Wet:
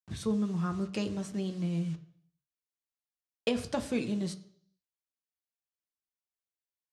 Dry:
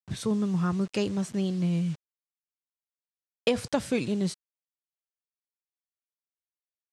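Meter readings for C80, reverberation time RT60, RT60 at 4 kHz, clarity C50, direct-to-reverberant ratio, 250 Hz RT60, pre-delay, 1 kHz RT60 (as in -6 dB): 17.0 dB, 0.60 s, 0.65 s, 13.5 dB, 7.0 dB, 0.65 s, 3 ms, 0.55 s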